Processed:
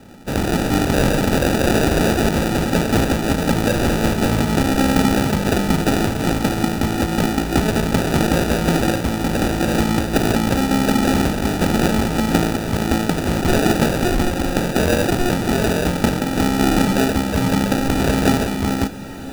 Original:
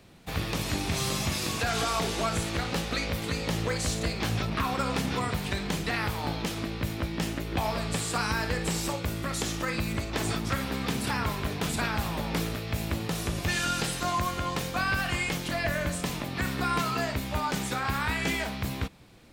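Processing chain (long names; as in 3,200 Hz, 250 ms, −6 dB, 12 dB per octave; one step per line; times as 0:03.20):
graphic EQ with 10 bands 125 Hz −4 dB, 250 Hz +11 dB, 4,000 Hz +11 dB
decimation without filtering 41×
on a send: feedback delay with all-pass diffusion 1,352 ms, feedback 41%, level −15 dB
on the sum: level +8 dB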